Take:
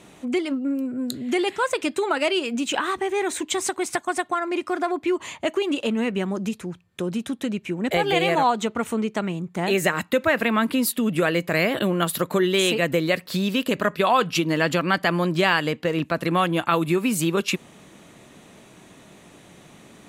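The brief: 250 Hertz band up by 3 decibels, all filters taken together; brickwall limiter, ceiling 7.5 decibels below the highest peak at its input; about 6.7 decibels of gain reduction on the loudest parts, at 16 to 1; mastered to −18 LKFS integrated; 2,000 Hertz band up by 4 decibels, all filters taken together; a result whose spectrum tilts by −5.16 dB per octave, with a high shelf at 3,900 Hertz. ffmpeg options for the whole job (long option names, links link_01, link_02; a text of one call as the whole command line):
ffmpeg -i in.wav -af "equalizer=frequency=250:width_type=o:gain=4,equalizer=frequency=2000:width_type=o:gain=6.5,highshelf=frequency=3900:gain=-6.5,acompressor=threshold=-20dB:ratio=16,volume=8dB,alimiter=limit=-6.5dB:level=0:latency=1" out.wav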